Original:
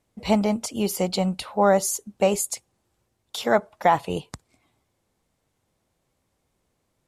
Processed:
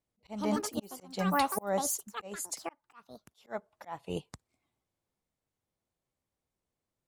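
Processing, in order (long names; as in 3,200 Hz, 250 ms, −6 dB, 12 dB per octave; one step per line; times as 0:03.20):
delay with pitch and tempo change per echo 205 ms, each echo +6 semitones, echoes 2, each echo −6 dB
volume swells 333 ms
expander for the loud parts 1.5 to 1, over −45 dBFS
level −3.5 dB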